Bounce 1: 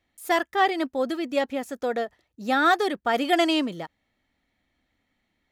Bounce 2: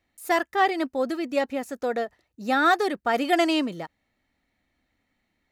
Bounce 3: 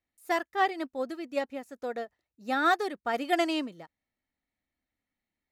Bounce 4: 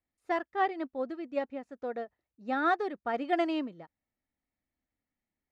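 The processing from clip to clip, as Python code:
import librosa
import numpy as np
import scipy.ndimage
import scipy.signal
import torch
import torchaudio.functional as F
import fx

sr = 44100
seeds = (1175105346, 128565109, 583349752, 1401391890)

y1 = fx.notch(x, sr, hz=3300.0, q=11.0)
y2 = fx.upward_expand(y1, sr, threshold_db=-38.0, expansion=1.5)
y2 = F.gain(torch.from_numpy(y2), -4.0).numpy()
y3 = fx.spacing_loss(y2, sr, db_at_10k=26)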